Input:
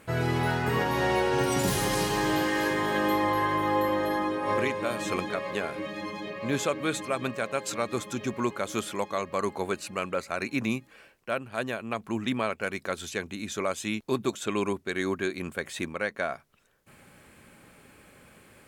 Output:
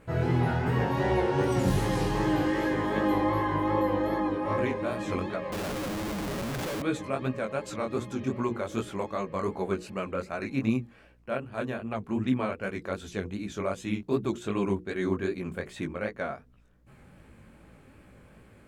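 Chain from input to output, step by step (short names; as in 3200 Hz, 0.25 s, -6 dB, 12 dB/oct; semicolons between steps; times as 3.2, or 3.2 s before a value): tilt -2.5 dB/oct; notches 60/120/180/240/300/360/420/480 Hz; hum 60 Hz, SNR 34 dB; chorus 2.6 Hz, delay 15.5 ms, depth 7.3 ms; 5.52–6.82 Schmitt trigger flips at -40 dBFS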